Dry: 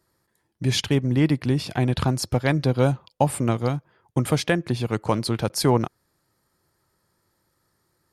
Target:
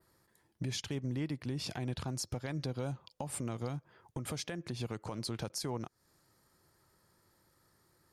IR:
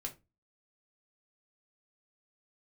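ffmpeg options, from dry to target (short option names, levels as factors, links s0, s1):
-af "adynamicequalizer=threshold=0.00562:dfrequency=6200:dqfactor=1.4:tfrequency=6200:tqfactor=1.4:attack=5:release=100:ratio=0.375:range=3.5:mode=boostabove:tftype=bell,acompressor=threshold=0.0224:ratio=4,alimiter=level_in=1.58:limit=0.0631:level=0:latency=1:release=136,volume=0.631"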